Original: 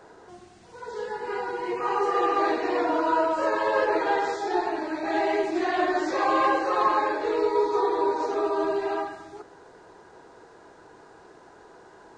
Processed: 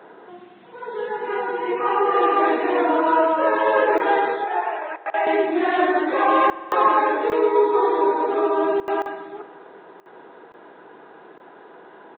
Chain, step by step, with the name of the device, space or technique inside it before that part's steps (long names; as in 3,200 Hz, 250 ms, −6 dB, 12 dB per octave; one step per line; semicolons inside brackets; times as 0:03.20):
call with lost packets (high-pass filter 170 Hz 24 dB per octave; downsampling to 8,000 Hz; dropped packets bursts)
0:04.44–0:05.27: Chebyshev band-pass filter 510–2,900 Hz, order 3
spring reverb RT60 2.7 s, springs 48 ms, chirp 65 ms, DRR 16 dB
level +5.5 dB